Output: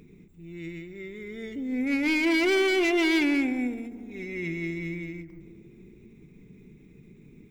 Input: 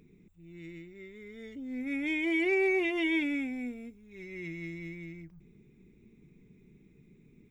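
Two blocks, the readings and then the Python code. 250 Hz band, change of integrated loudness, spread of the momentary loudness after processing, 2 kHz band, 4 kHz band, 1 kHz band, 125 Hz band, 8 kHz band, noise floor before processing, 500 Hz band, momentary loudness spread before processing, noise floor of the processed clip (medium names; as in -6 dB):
+7.0 dB, +5.5 dB, 18 LU, +5.0 dB, +10.5 dB, +8.5 dB, +7.5 dB, no reading, -61 dBFS, +5.0 dB, 21 LU, -53 dBFS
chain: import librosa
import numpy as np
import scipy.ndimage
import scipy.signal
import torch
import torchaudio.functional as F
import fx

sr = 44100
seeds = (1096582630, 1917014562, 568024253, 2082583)

y = fx.dynamic_eq(x, sr, hz=710.0, q=1.8, threshold_db=-49.0, ratio=4.0, max_db=4)
y = np.clip(y, -10.0 ** (-28.5 / 20.0), 10.0 ** (-28.5 / 20.0))
y = fx.echo_tape(y, sr, ms=137, feedback_pct=82, wet_db=-12, lp_hz=1400.0, drive_db=24.0, wow_cents=30)
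y = fx.end_taper(y, sr, db_per_s=110.0)
y = y * librosa.db_to_amplitude(8.0)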